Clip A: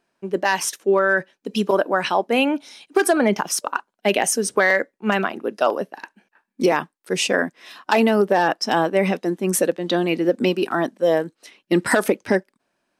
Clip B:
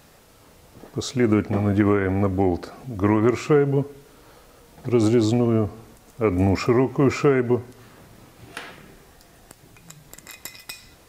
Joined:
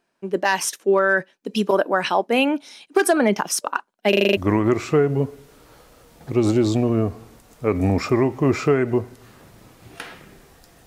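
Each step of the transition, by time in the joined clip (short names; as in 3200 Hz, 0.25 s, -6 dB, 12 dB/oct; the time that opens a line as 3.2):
clip A
4.09 stutter in place 0.04 s, 7 plays
4.37 switch to clip B from 2.94 s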